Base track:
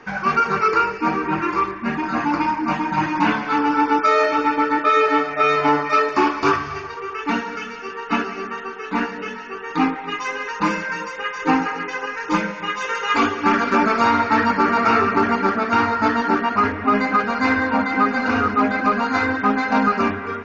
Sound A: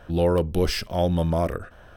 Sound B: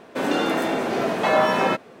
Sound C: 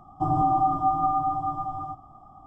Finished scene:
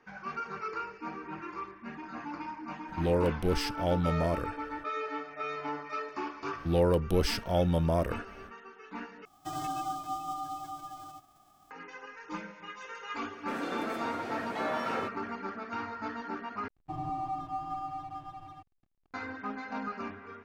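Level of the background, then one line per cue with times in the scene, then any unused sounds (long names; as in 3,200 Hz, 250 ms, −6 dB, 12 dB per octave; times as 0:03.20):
base track −19.5 dB
0:02.88: mix in A −6.5 dB + highs frequency-modulated by the lows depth 0.19 ms
0:06.56: mix in A −4.5 dB, fades 0.05 s
0:09.25: overwrite with C −13 dB + spectral envelope flattened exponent 0.3
0:13.32: mix in B −14 dB + notch comb filter 200 Hz
0:16.68: overwrite with C −13 dB + slack as between gear wheels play −35 dBFS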